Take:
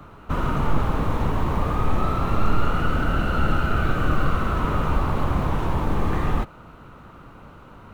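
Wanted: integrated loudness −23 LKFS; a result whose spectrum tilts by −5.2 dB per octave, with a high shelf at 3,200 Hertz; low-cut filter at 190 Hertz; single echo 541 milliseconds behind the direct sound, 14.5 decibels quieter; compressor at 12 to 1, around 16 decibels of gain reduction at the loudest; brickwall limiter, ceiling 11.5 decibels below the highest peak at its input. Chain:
high-pass filter 190 Hz
high-shelf EQ 3,200 Hz −6.5 dB
downward compressor 12 to 1, threshold −40 dBFS
brickwall limiter −40.5 dBFS
single-tap delay 541 ms −14.5 dB
level +26 dB

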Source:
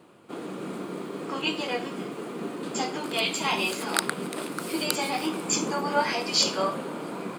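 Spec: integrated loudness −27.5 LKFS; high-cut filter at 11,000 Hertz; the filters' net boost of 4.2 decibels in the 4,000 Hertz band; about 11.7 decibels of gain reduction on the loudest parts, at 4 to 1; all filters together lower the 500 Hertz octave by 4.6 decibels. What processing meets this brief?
low-pass filter 11,000 Hz
parametric band 500 Hz −6 dB
parametric band 4,000 Hz +5.5 dB
downward compressor 4 to 1, threshold −30 dBFS
level +5.5 dB

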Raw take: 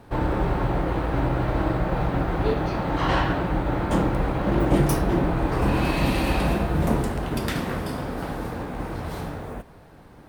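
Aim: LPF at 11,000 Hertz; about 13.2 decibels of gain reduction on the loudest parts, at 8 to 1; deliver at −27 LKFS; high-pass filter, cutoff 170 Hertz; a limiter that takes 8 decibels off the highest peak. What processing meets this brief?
high-pass filter 170 Hz
low-pass filter 11,000 Hz
downward compressor 8 to 1, threshold −31 dBFS
level +10 dB
brickwall limiter −17.5 dBFS

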